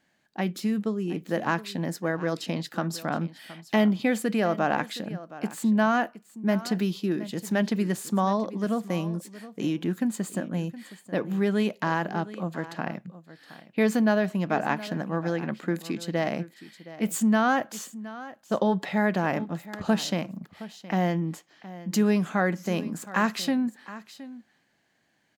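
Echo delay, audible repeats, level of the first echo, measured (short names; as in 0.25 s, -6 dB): 0.718 s, 1, -16.5 dB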